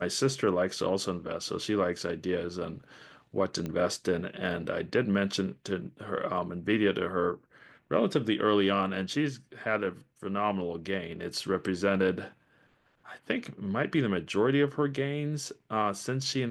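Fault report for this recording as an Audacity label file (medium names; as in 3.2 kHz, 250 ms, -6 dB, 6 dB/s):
3.660000	3.660000	pop -22 dBFS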